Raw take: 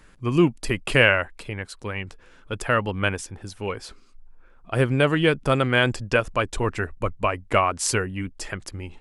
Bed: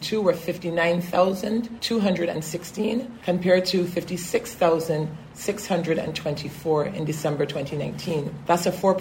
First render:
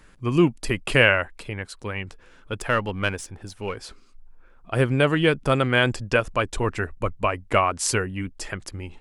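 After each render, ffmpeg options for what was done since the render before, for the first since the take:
-filter_complex "[0:a]asettb=1/sr,asplit=3[s0][s1][s2];[s0]atrim=end=2.554[s3];[s1]atrim=start=2.55:end=3.81,asetpts=PTS-STARTPTS,afade=t=in:d=0.004:c=qsin,afade=t=out:st=1.256:d=0.004:c=qsin,aeval=exprs='if(lt(val(0),0),0.708*val(0),val(0))':c=same[s4];[s2]atrim=start=3.806[s5];[s3][s4]acrossfade=d=0.004:c1=hsin:c2=qsin[s6];[s6][s5]acrossfade=d=0.004:c1=qsin:c2=hsin"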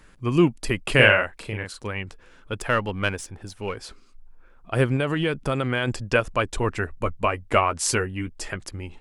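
-filter_complex "[0:a]asettb=1/sr,asplit=3[s0][s1][s2];[s0]atrim=end=0.954[s3];[s1]atrim=start=0.95:end=1.87,asetpts=PTS-STARTPTS,afade=t=in:d=0.004:c=qsin,afade=t=out:st=0.916:d=0.004:c=qsin,asplit=2[s4][s5];[s5]adelay=38,volume=0.631[s6];[s4][s6]amix=inputs=2:normalize=0,atrim=end_sample=40572[s7];[s2]atrim=start=1.866[s8];[s3][s7]acrossfade=d=0.004:c1=hsin:c2=qsin[s9];[s9][s8]acrossfade=d=0.004:c1=qsin:c2=hsin,asettb=1/sr,asplit=3[s10][s11][s12];[s10]atrim=end=4.964[s13];[s11]atrim=start=4.96:end=5.88,asetpts=PTS-STARTPTS,afade=t=in:d=0.004:c=qsin,afade=t=out:st=0.916:d=0.004:c=qsin,acompressor=threshold=0.112:ratio=6:attack=3.2:release=140:knee=1:detection=peak[s14];[s12]atrim=start=5.876[s15];[s13][s14]acrossfade=d=0.004:c1=hsin:c2=qsin[s16];[s16][s15]acrossfade=d=0.004:c1=qsin:c2=hsin,asettb=1/sr,asplit=3[s17][s18][s19];[s17]atrim=end=6.924[s20];[s18]atrim=start=6.92:end=8.56,asetpts=PTS-STARTPTS,afade=t=in:d=0.004:c=qsin,afade=t=out:st=1.636:d=0.004:c=qsin,asplit=2[s21][s22];[s22]adelay=13,volume=0.316[s23];[s21][s23]amix=inputs=2:normalize=0,atrim=end_sample=72324[s24];[s19]atrim=start=8.556[s25];[s20][s24]acrossfade=d=0.004:c1=hsin:c2=qsin[s26];[s26][s25]acrossfade=d=0.004:c1=qsin:c2=hsin"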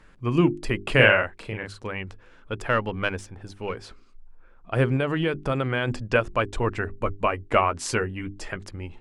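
-af "aemphasis=mode=reproduction:type=50kf,bandreject=f=50:t=h:w=6,bandreject=f=100:t=h:w=6,bandreject=f=150:t=h:w=6,bandreject=f=200:t=h:w=6,bandreject=f=250:t=h:w=6,bandreject=f=300:t=h:w=6,bandreject=f=350:t=h:w=6,bandreject=f=400:t=h:w=6"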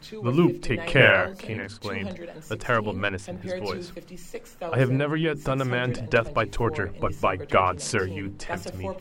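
-filter_complex "[1:a]volume=0.2[s0];[0:a][s0]amix=inputs=2:normalize=0"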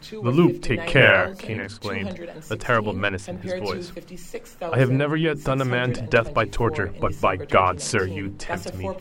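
-af "volume=1.41,alimiter=limit=0.708:level=0:latency=1"

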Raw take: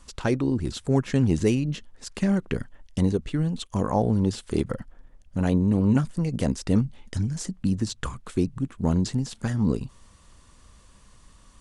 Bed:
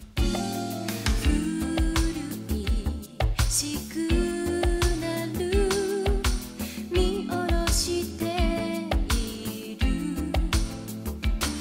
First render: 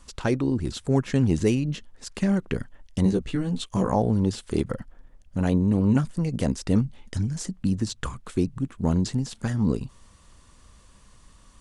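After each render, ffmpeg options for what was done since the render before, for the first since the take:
-filter_complex "[0:a]asettb=1/sr,asplit=3[s0][s1][s2];[s0]atrim=end=3.044[s3];[s1]atrim=start=3.04:end=3.95,asetpts=PTS-STARTPTS,afade=t=in:d=0.004:c=qsin,afade=t=out:st=0.906:d=0.004:c=qsin,asplit=2[s4][s5];[s5]adelay=16,volume=0.708[s6];[s4][s6]amix=inputs=2:normalize=0,atrim=end_sample=40131[s7];[s2]atrim=start=3.946[s8];[s3][s7]acrossfade=d=0.004:c1=hsin:c2=qsin[s9];[s9][s8]acrossfade=d=0.004:c1=qsin:c2=hsin"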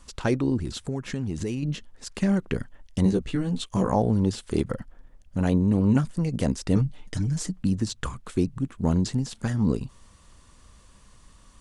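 -filter_complex "[0:a]asettb=1/sr,asplit=3[s0][s1][s2];[s0]atrim=end=0.614[s3];[s1]atrim=start=0.61:end=1.63,asetpts=PTS-STARTPTS,afade=t=in:d=0.004:c=qsin,afade=t=out:st=1.016:d=0.004:c=qsin,acompressor=threshold=0.0562:ratio=6:attack=3.2:release=140:knee=1:detection=peak[s4];[s2]atrim=start=1.626[s5];[s3][s4]acrossfade=d=0.004:c1=hsin:c2=qsin[s6];[s6][s5]acrossfade=d=0.004:c1=qsin:c2=hsin,asettb=1/sr,asplit=3[s7][s8][s9];[s7]atrim=end=6.764[s10];[s8]atrim=start=6.76:end=7.62,asetpts=PTS-STARTPTS,afade=t=in:d=0.004:c=qsin,afade=t=out:st=0.856:d=0.004:c=qsin,aecho=1:1:6.6:0.64,atrim=end_sample=37926[s11];[s9]atrim=start=7.616[s12];[s10][s11]acrossfade=d=0.004:c1=hsin:c2=qsin[s13];[s13][s12]acrossfade=d=0.004:c1=qsin:c2=hsin"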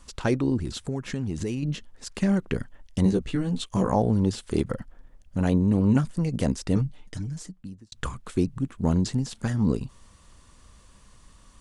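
-filter_complex "[0:a]asplit=2[s0][s1];[s0]atrim=end=7.92,asetpts=PTS-STARTPTS,afade=t=out:st=6.52:d=1.4[s2];[s1]atrim=start=7.92,asetpts=PTS-STARTPTS,afade=t=in:d=0.004:c=hsin[s3];[s2][s3]concat=n=2:v=0:a=1"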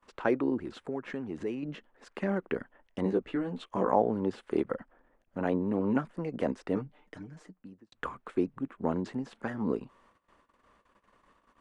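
-filter_complex "[0:a]agate=range=0.126:threshold=0.00282:ratio=16:detection=peak,acrossover=split=260 2400:gain=0.0794 1 0.0708[s0][s1][s2];[s0][s1][s2]amix=inputs=3:normalize=0"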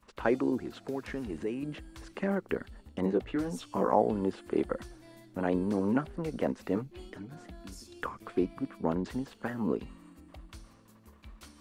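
-filter_complex "[1:a]volume=0.0596[s0];[0:a][s0]amix=inputs=2:normalize=0"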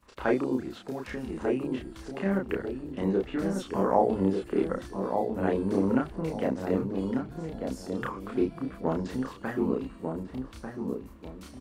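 -filter_complex "[0:a]asplit=2[s0][s1];[s1]adelay=31,volume=0.794[s2];[s0][s2]amix=inputs=2:normalize=0,asplit=2[s3][s4];[s4]adelay=1194,lowpass=f=950:p=1,volume=0.631,asplit=2[s5][s6];[s6]adelay=1194,lowpass=f=950:p=1,volume=0.3,asplit=2[s7][s8];[s8]adelay=1194,lowpass=f=950:p=1,volume=0.3,asplit=2[s9][s10];[s10]adelay=1194,lowpass=f=950:p=1,volume=0.3[s11];[s3][s5][s7][s9][s11]amix=inputs=5:normalize=0"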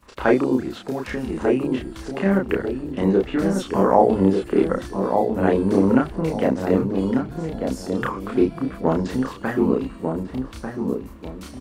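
-af "volume=2.66,alimiter=limit=0.794:level=0:latency=1"

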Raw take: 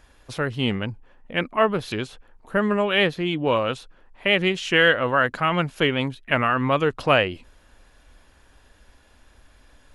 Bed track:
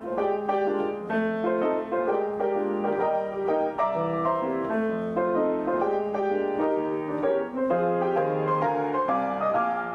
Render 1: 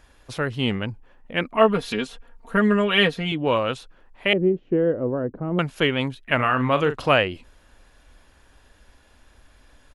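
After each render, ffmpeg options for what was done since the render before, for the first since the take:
-filter_complex "[0:a]asettb=1/sr,asplit=3[s0][s1][s2];[s0]atrim=end=1.534[s3];[s1]atrim=start=1.53:end=3.32,asetpts=PTS-STARTPTS,afade=t=in:d=0.004:c=qsin,afade=t=out:st=1.786:d=0.004:c=qsin,aecho=1:1:4.3:0.78,atrim=end_sample=78939[s4];[s2]atrim=start=3.316[s5];[s3][s4]acrossfade=d=0.004:c1=hsin:c2=qsin[s6];[s6][s5]acrossfade=d=0.004:c1=qsin:c2=hsin,asettb=1/sr,asplit=3[s7][s8][s9];[s7]atrim=end=4.334[s10];[s8]atrim=start=4.33:end=5.59,asetpts=PTS-STARTPTS,afade=t=in:d=0.004:c=qsin,afade=t=out:st=1.256:d=0.004:c=qsin,lowpass=f=380:t=q:w=1.7[s11];[s9]atrim=start=5.586[s12];[s10][s11]acrossfade=d=0.004:c1=hsin:c2=qsin[s13];[s13][s12]acrossfade=d=0.004:c1=qsin:c2=hsin,asplit=3[s14][s15][s16];[s14]afade=t=out:st=6.38:d=0.02[s17];[s15]asplit=2[s18][s19];[s19]adelay=40,volume=0.316[s20];[s18][s20]amix=inputs=2:normalize=0,afade=t=in:st=6.38:d=0.02,afade=t=out:st=7.08:d=0.02[s21];[s16]afade=t=in:st=7.08:d=0.02[s22];[s17][s21][s22]amix=inputs=3:normalize=0"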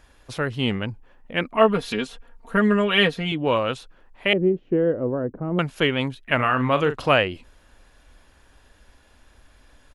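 -filter_complex "[0:a]asettb=1/sr,asplit=3[s0][s1][s2];[s0]atrim=end=5.154[s3];[s1]atrim=start=5.15:end=5.56,asetpts=PTS-STARTPTS,afade=t=in:d=0.004:c=qsin,afade=t=out:st=0.406:d=0.004:c=qsin,equalizer=f=4900:w=1.5:g=-13.5[s4];[s2]atrim=start=5.556[s5];[s3][s4]acrossfade=d=0.004:c1=hsin:c2=qsin[s6];[s6][s5]acrossfade=d=0.004:c1=qsin:c2=hsin"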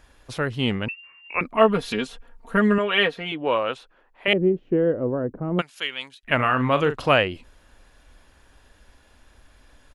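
-filter_complex "[0:a]asettb=1/sr,asplit=3[s0][s1][s2];[s0]atrim=end=0.884[s3];[s1]atrim=start=0.88:end=1.41,asetpts=PTS-STARTPTS,afade=t=in:d=0.004:c=qsin,afade=t=out:st=0.526:d=0.004:c=qsin,lowpass=f=2400:t=q:w=0.5098,lowpass=f=2400:t=q:w=0.6013,lowpass=f=2400:t=q:w=0.9,lowpass=f=2400:t=q:w=2.563,afreqshift=-2800[s4];[s2]atrim=start=1.406[s5];[s3][s4]acrossfade=d=0.004:c1=hsin:c2=qsin[s6];[s6][s5]acrossfade=d=0.004:c1=qsin:c2=hsin,asettb=1/sr,asplit=3[s7][s8][s9];[s7]atrim=end=2.784[s10];[s8]atrim=start=2.78:end=4.28,asetpts=PTS-STARTPTS,afade=t=in:d=0.004:c=qsin,afade=t=out:st=1.496:d=0.004:c=qsin,bass=f=250:g=-13,treble=f=4000:g=-9[s11];[s9]atrim=start=4.276[s12];[s10][s11]acrossfade=d=0.004:c1=hsin:c2=qsin[s13];[s13][s12]acrossfade=d=0.004:c1=qsin:c2=hsin,asplit=3[s14][s15][s16];[s14]afade=t=out:st=5.6:d=0.02[s17];[s15]bandpass=f=6300:t=q:w=0.5,afade=t=in:st=5.6:d=0.02,afade=t=out:st=6.23:d=0.02[s18];[s16]afade=t=in:st=6.23:d=0.02[s19];[s17][s18][s19]amix=inputs=3:normalize=0"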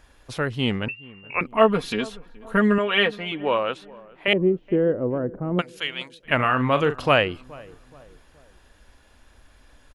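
-filter_complex "[0:a]asplit=2[s0][s1];[s1]adelay=424,lowpass=f=1100:p=1,volume=0.0891,asplit=2[s2][s3];[s3]adelay=424,lowpass=f=1100:p=1,volume=0.48,asplit=2[s4][s5];[s5]adelay=424,lowpass=f=1100:p=1,volume=0.48[s6];[s0][s2][s4][s6]amix=inputs=4:normalize=0"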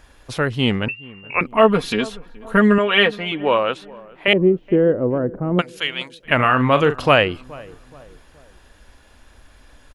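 -af "volume=1.78,alimiter=limit=0.794:level=0:latency=1"

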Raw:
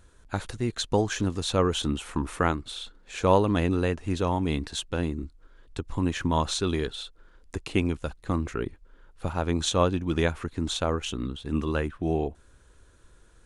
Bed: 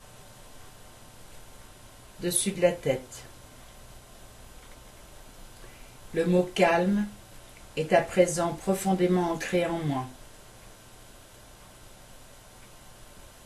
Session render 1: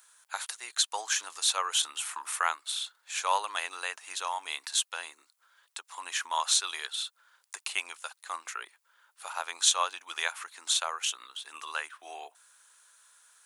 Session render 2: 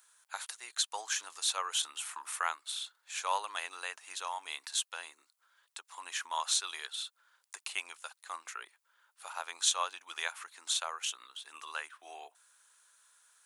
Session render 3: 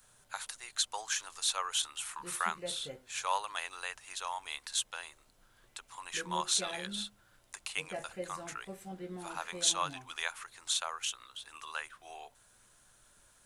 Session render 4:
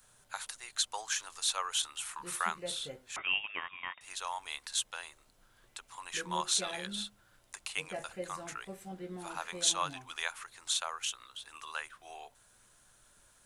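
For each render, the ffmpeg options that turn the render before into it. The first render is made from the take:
-af "highpass=f=870:w=0.5412,highpass=f=870:w=1.3066,aemphasis=mode=production:type=50fm"
-af "volume=0.562"
-filter_complex "[1:a]volume=0.106[s0];[0:a][s0]amix=inputs=2:normalize=0"
-filter_complex "[0:a]asettb=1/sr,asplit=3[s0][s1][s2];[s0]atrim=end=3.164[s3];[s1]atrim=start=3.16:end=4.01,asetpts=PTS-STARTPTS,afade=t=in:d=0.004:c=qsin,afade=t=out:st=0.846:d=0.004:c=qsin,lowpass=f=3100:t=q:w=0.5098,lowpass=f=3100:t=q:w=0.6013,lowpass=f=3100:t=q:w=0.9,lowpass=f=3100:t=q:w=2.563,afreqshift=-3700[s4];[s2]atrim=start=4.006[s5];[s3][s4]acrossfade=d=0.004:c1=hsin:c2=qsin[s6];[s6][s5]acrossfade=d=0.004:c1=qsin:c2=hsin"

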